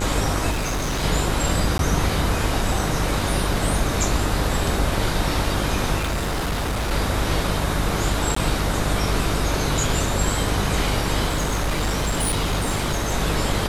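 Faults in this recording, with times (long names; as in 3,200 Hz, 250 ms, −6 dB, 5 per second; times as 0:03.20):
mains buzz 50 Hz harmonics 30 −26 dBFS
0:00.51–0:01.04: clipping −20.5 dBFS
0:01.78–0:01.79: drop-out 12 ms
0:05.98–0:06.92: clipping −20.5 dBFS
0:08.35–0:08.36: drop-out 14 ms
0:11.27–0:13.14: clipping −18 dBFS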